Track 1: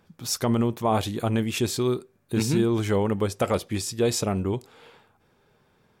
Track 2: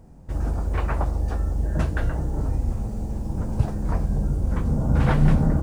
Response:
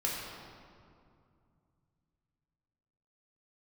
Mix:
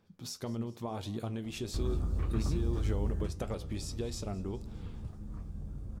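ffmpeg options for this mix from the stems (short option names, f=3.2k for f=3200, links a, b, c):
-filter_complex "[0:a]equalizer=f=4.6k:w=0.82:g=6.5,acompressor=threshold=-26dB:ratio=6,volume=-5.5dB,asplit=2[a][b];[b]volume=-21dB[c];[1:a]equalizer=f=1.2k:t=o:w=0.28:g=13.5,acrossover=split=110|390|2100[d][e][f][g];[d]acompressor=threshold=-26dB:ratio=4[h];[e]acompressor=threshold=-34dB:ratio=4[i];[f]acompressor=threshold=-50dB:ratio=4[j];[g]acompressor=threshold=-44dB:ratio=4[k];[h][i][j][k]amix=inputs=4:normalize=0,adelay=1450,volume=-3dB,afade=t=out:st=3.1:d=0.25:silence=0.334965[l];[c]aecho=0:1:205|410|615|820|1025|1230|1435|1640:1|0.55|0.303|0.166|0.0915|0.0503|0.0277|0.0152[m];[a][l][m]amix=inputs=3:normalize=0,tiltshelf=f=770:g=4,flanger=delay=8.7:depth=3.9:regen=74:speed=1.7:shape=triangular"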